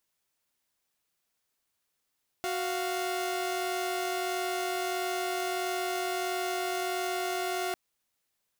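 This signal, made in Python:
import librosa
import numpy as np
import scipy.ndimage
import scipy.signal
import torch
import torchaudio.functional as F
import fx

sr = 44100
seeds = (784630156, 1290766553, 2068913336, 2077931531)

y = fx.chord(sr, length_s=5.3, notes=(66, 77), wave='saw', level_db=-30.0)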